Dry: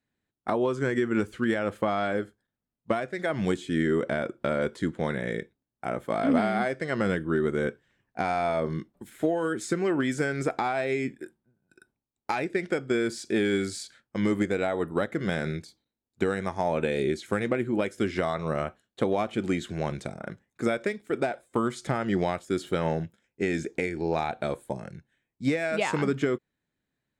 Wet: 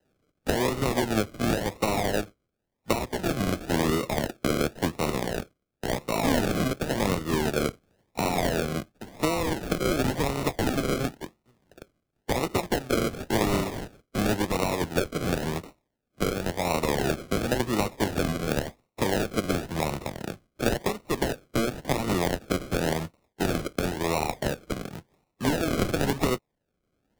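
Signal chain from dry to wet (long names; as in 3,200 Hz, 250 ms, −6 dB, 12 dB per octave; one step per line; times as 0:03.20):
compressing power law on the bin magnitudes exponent 0.61
dynamic equaliser 3,500 Hz, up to +6 dB, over −47 dBFS, Q 1.3
sample-and-hold swept by an LFO 38×, swing 60% 0.94 Hz
multiband upward and downward compressor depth 40%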